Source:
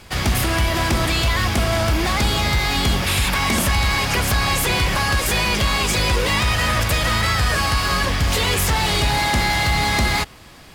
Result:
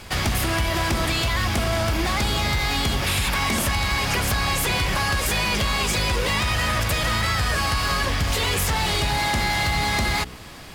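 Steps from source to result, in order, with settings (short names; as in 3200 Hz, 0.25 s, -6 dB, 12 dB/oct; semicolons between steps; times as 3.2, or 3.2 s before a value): de-hum 61.92 Hz, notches 8; compressor 4:1, threshold -20 dBFS, peak gain reduction 5 dB; in parallel at -1.5 dB: limiter -23 dBFS, peak gain reduction 10.5 dB; on the sum: hard clip -12.5 dBFS, distortion -41 dB; gain -2 dB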